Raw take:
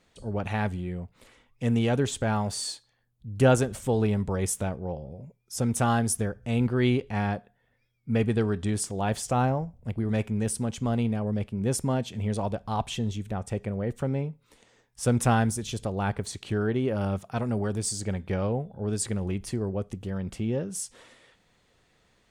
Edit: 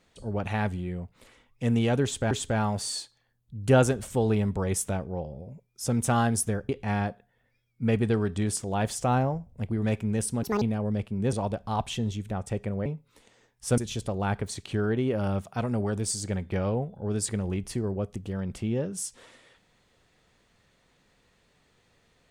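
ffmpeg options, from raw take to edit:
-filter_complex "[0:a]asplit=8[s0][s1][s2][s3][s4][s5][s6][s7];[s0]atrim=end=2.312[s8];[s1]atrim=start=2.028:end=6.412[s9];[s2]atrim=start=6.958:end=10.704[s10];[s3]atrim=start=10.7:end=11.03,asetpts=PTS-STARTPTS,asetrate=78057,aresample=44100,atrim=end_sample=8222,asetpts=PTS-STARTPTS[s11];[s4]atrim=start=11.026:end=11.742[s12];[s5]atrim=start=12.328:end=13.862[s13];[s6]atrim=start=14.208:end=15.132[s14];[s7]atrim=start=15.548[s15];[s8][s9]acrossfade=d=0.004:c1=hsin:c2=hsin[s16];[s16][s10]acrossfade=d=0.004:c1=hsin:c2=hsin[s17];[s17][s11]acrossfade=d=0.004:c1=hsin:c2=hsin[s18];[s18][s12]acrossfade=d=0.004:c1=hsin:c2=hsin[s19];[s19][s13]acrossfade=d=0.004:c1=hsin:c2=hsin[s20];[s20][s14]acrossfade=d=0.004:c1=hsin:c2=hsin[s21];[s21][s15]acrossfade=d=0.004:c1=hsin:c2=hsin"

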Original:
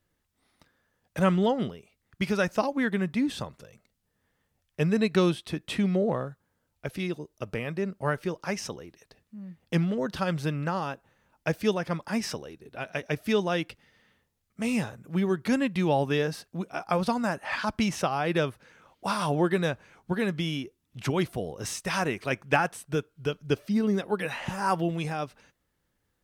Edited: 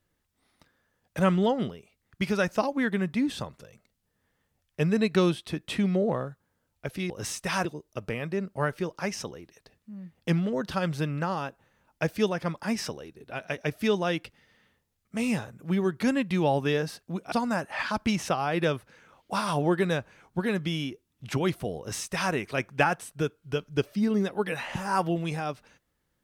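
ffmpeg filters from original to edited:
-filter_complex "[0:a]asplit=4[s0][s1][s2][s3];[s0]atrim=end=7.102[s4];[s1]atrim=start=21.508:end=22.062[s5];[s2]atrim=start=7.098:end=16.772[s6];[s3]atrim=start=17.048[s7];[s4][s5]acrossfade=d=0.004:c1=hsin:c2=hsin[s8];[s8][s6]acrossfade=d=0.004:c1=hsin:c2=hsin[s9];[s9][s7]acrossfade=d=0.004:c1=hsin:c2=hsin"

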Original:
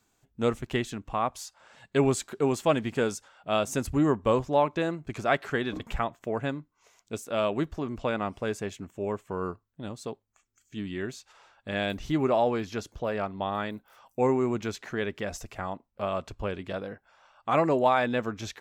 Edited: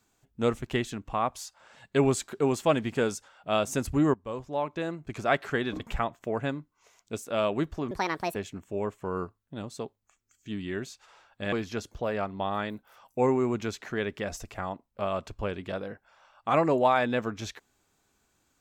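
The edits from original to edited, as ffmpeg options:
-filter_complex "[0:a]asplit=5[s0][s1][s2][s3][s4];[s0]atrim=end=4.14,asetpts=PTS-STARTPTS,afade=t=out:st=4.136:d=0.004:c=hsin:silence=0.125893[s5];[s1]atrim=start=4.14:end=7.914,asetpts=PTS-STARTPTS,afade=t=in:d=1.2:silence=0.125893[s6];[s2]atrim=start=7.91:end=8.62,asetpts=PTS-STARTPTS,asetrate=70560,aresample=44100,atrim=end_sample=19569,asetpts=PTS-STARTPTS[s7];[s3]atrim=start=8.616:end=11.792[s8];[s4]atrim=start=12.528[s9];[s5][s6]concat=n=2:v=0:a=1[s10];[s10][s7]acrossfade=d=0.004:c1=hsin:c2=hsin[s11];[s11][s8]acrossfade=d=0.004:c1=hsin:c2=hsin[s12];[s12][s9]acrossfade=d=0.004:c1=hsin:c2=hsin"

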